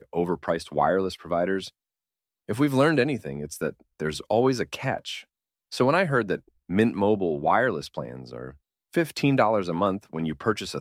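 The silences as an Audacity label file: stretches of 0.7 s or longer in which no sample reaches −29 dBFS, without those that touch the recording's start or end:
1.670000	2.490000	silence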